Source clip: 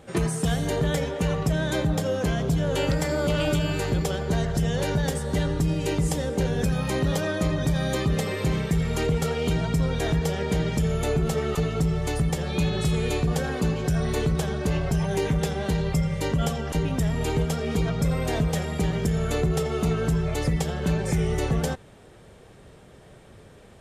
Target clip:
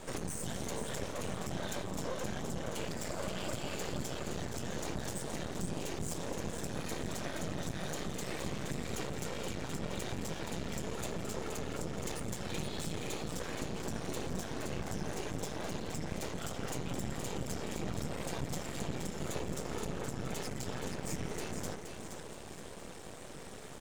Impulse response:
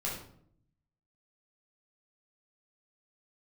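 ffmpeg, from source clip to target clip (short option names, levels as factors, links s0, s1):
-af "highpass=120,equalizer=f=7100:t=o:w=1.1:g=8.5,acompressor=threshold=0.0141:ratio=6,flanger=delay=8.7:depth=5.4:regen=-77:speed=1.1:shape=triangular,asoftclip=type=tanh:threshold=0.0106,afftfilt=real='hypot(re,im)*cos(2*PI*random(0))':imag='hypot(re,im)*sin(2*PI*random(1))':win_size=512:overlap=0.75,aecho=1:1:472|944|1416|1888|2360:0.447|0.197|0.0865|0.0381|0.0167,aeval=exprs='max(val(0),0)':c=same,volume=6.31"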